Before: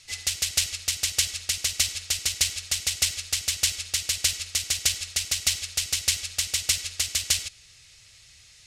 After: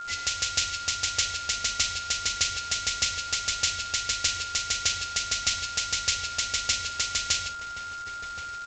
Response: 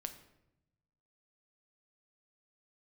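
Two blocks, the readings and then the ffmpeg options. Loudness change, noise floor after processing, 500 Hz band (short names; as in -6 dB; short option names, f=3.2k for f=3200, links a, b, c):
-2.0 dB, -37 dBFS, +3.0 dB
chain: -filter_complex "[0:a]asplit=2[a][b];[b]acompressor=threshold=-36dB:ratio=20,volume=0.5dB[c];[a][c]amix=inputs=2:normalize=0,asplit=2[d][e];[e]adelay=1075,lowpass=f=1.2k:p=1,volume=-9dB,asplit=2[f][g];[g]adelay=1075,lowpass=f=1.2k:p=1,volume=0.54,asplit=2[h][i];[i]adelay=1075,lowpass=f=1.2k:p=1,volume=0.54,asplit=2[j][k];[k]adelay=1075,lowpass=f=1.2k:p=1,volume=0.54,asplit=2[l][m];[m]adelay=1075,lowpass=f=1.2k:p=1,volume=0.54,asplit=2[n][o];[o]adelay=1075,lowpass=f=1.2k:p=1,volume=0.54[p];[d][f][h][j][l][n][p]amix=inputs=7:normalize=0[q];[1:a]atrim=start_sample=2205,asetrate=70560,aresample=44100[r];[q][r]afir=irnorm=-1:irlink=0,acontrast=53,aresample=16000,acrusher=bits=6:mix=0:aa=0.000001,aresample=44100,aeval=exprs='val(0)+0.0224*sin(2*PI*1400*n/s)':c=same,volume=-1.5dB"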